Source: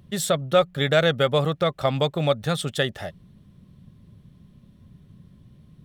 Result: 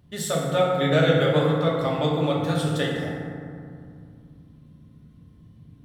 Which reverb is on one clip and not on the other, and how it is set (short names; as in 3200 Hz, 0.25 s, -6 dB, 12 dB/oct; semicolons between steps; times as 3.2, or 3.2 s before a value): FDN reverb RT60 2.3 s, low-frequency decay 1.4×, high-frequency decay 0.4×, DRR -5 dB; gain -7 dB